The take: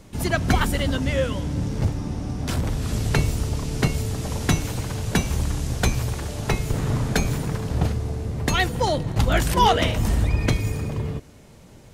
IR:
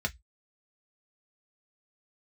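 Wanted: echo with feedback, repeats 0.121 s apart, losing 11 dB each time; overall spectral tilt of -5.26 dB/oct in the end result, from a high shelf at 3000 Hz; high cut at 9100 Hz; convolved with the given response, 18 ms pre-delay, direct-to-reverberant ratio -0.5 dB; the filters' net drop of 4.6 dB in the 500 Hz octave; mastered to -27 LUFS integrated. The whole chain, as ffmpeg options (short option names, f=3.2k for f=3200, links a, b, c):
-filter_complex "[0:a]lowpass=9.1k,equalizer=f=500:t=o:g=-6,highshelf=f=3k:g=4.5,aecho=1:1:121|242|363:0.282|0.0789|0.0221,asplit=2[a][b];[1:a]atrim=start_sample=2205,adelay=18[c];[b][c]afir=irnorm=-1:irlink=0,volume=-5dB[d];[a][d]amix=inputs=2:normalize=0,volume=-10dB"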